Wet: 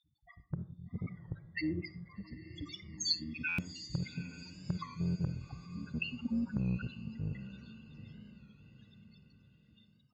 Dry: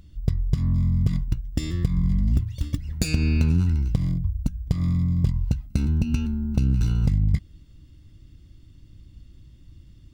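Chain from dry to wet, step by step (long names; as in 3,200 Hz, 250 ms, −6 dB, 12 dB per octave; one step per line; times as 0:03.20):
time-frequency cells dropped at random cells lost 60%
gate pattern "xxxx..x." 96 BPM −12 dB
spectral peaks only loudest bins 8
in parallel at −10.5 dB: soft clipping −23 dBFS, distortion −8 dB
on the sum: loudspeaker in its box 370–4,900 Hz, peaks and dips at 710 Hz −9 dB, 1,500 Hz +7 dB, 3,100 Hz −7 dB
on a send: feedback delay with all-pass diffusion 788 ms, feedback 48%, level −13 dB
0:01.96–0:02.53: on the sum: downward compressor, threshold −48 dBFS, peak gain reduction 9.5 dB
tilt shelving filter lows −4 dB, about 660 Hz
comb and all-pass reverb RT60 0.48 s, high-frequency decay 0.6×, pre-delay 10 ms, DRR 13.5 dB
automatic gain control gain up to 11 dB
buffer that repeats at 0:03.48, samples 512, times 8
wow of a warped record 33 1/3 rpm, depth 100 cents
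level −2 dB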